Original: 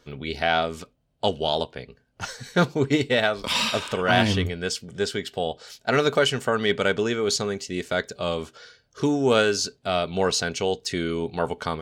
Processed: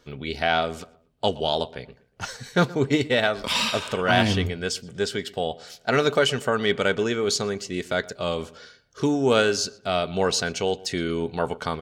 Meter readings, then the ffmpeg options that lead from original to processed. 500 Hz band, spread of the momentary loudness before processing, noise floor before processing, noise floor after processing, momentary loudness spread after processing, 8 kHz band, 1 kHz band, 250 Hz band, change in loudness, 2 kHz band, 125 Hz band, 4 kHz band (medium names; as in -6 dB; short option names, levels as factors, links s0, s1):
0.0 dB, 11 LU, -66 dBFS, -60 dBFS, 11 LU, 0.0 dB, 0.0 dB, 0.0 dB, 0.0 dB, 0.0 dB, 0.0 dB, 0.0 dB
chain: -filter_complex "[0:a]asplit=2[s0][s1];[s1]adelay=120,lowpass=f=2500:p=1,volume=0.1,asplit=2[s2][s3];[s3]adelay=120,lowpass=f=2500:p=1,volume=0.37,asplit=2[s4][s5];[s5]adelay=120,lowpass=f=2500:p=1,volume=0.37[s6];[s0][s2][s4][s6]amix=inputs=4:normalize=0"